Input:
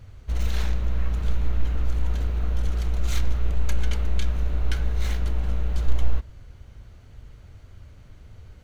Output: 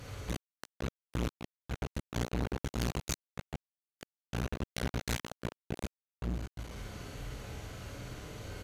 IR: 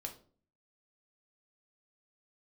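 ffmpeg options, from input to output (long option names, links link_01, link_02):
-filter_complex "[0:a]aresample=32000,aresample=44100[link_01];[1:a]atrim=start_sample=2205,asetrate=27783,aresample=44100[link_02];[link_01][link_02]afir=irnorm=-1:irlink=0,asoftclip=type=tanh:threshold=-8.5dB,acompressor=threshold=-19dB:ratio=12,asplit=2[link_03][link_04];[link_04]adelay=49,volume=-2dB[link_05];[link_03][link_05]amix=inputs=2:normalize=0,asoftclip=type=hard:threshold=-29.5dB,highpass=frequency=260:poles=1,highshelf=frequency=5700:gain=6,volume=9dB"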